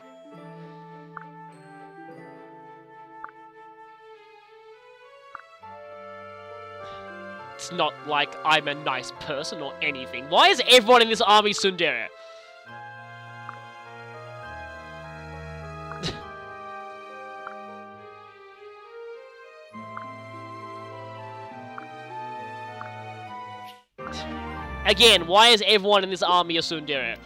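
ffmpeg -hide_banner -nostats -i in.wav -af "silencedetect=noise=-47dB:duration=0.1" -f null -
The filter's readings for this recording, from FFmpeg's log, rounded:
silence_start: 23.80
silence_end: 23.99 | silence_duration: 0.18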